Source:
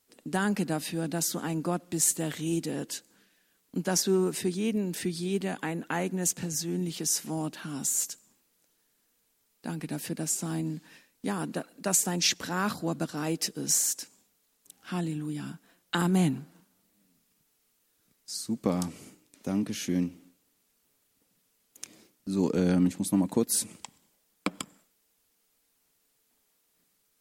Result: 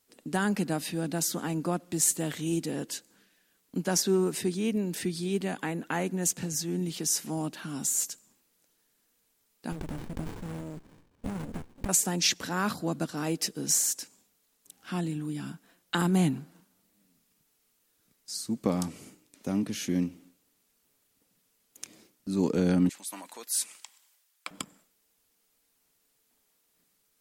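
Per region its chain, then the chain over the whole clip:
0:09.72–0:11.89: high shelf with overshoot 6,200 Hz +9 dB, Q 3 + downward compressor 12 to 1, threshold −30 dBFS + windowed peak hold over 65 samples
0:22.89–0:24.51: high-pass filter 1,200 Hz + transient designer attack −4 dB, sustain +4 dB
whole clip: no processing

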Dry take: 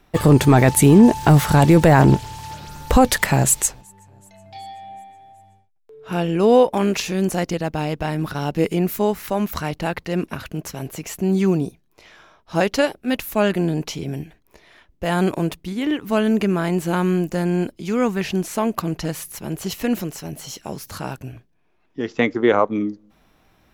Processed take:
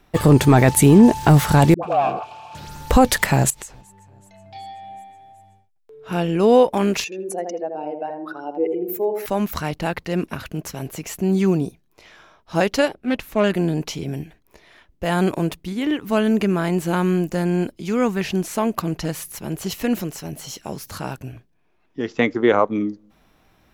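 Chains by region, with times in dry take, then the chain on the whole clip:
0:01.74–0:02.55: leveller curve on the samples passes 3 + formant filter a + all-pass dispersion highs, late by 88 ms, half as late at 480 Hz
0:03.50–0:04.84: downward compressor 10 to 1, threshold −28 dBFS + high-shelf EQ 7,100 Hz −7.5 dB
0:07.04–0:09.26: expanding power law on the bin magnitudes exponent 2 + high-pass filter 350 Hz 24 dB per octave + feedback echo with a low-pass in the loop 80 ms, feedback 47%, low-pass 950 Hz, level −3.5 dB
0:12.88–0:13.44: low-pass filter 3,100 Hz 6 dB per octave + highs frequency-modulated by the lows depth 0.12 ms
whole clip: no processing

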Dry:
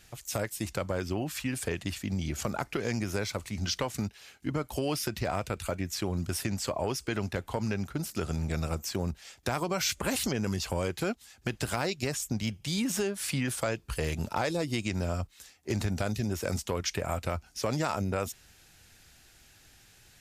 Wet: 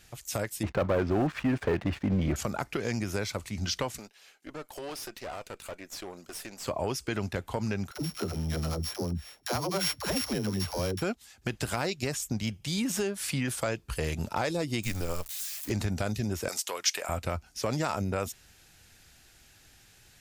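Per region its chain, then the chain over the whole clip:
0:00.63–0:02.36: low-pass filter 1,500 Hz + low-shelf EQ 210 Hz −6 dB + leveller curve on the samples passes 3
0:03.98–0:06.66: Chebyshev high-pass filter 460 Hz + tube saturation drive 34 dB, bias 0.7
0:07.91–0:11.02: samples sorted by size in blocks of 8 samples + all-pass dispersion lows, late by 76 ms, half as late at 370 Hz
0:14.83–0:15.70: spike at every zero crossing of −31 dBFS + frequency shifter −94 Hz
0:16.48–0:17.09: high-pass filter 590 Hz + high-shelf EQ 2,700 Hz +8 dB
whole clip: no processing

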